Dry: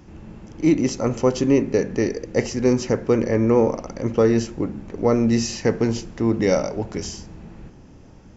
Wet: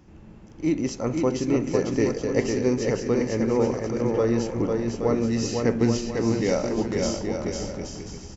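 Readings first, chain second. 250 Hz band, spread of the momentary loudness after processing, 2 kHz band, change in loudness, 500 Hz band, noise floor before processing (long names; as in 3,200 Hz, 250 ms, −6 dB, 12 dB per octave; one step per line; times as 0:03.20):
−3.0 dB, 6 LU, −2.5 dB, −3.5 dB, −3.0 dB, −46 dBFS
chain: speech leveller within 5 dB 0.5 s
bouncing-ball delay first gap 500 ms, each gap 0.65×, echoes 5
level −5 dB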